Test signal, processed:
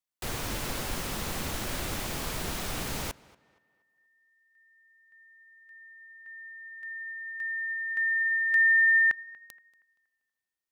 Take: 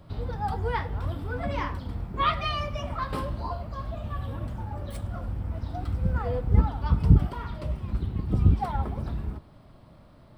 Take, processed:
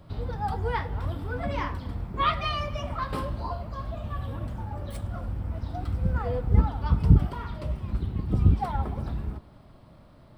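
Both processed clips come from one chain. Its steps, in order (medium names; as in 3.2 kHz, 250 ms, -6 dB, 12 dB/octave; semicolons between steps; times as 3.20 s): tape echo 237 ms, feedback 37%, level -21 dB, low-pass 3.5 kHz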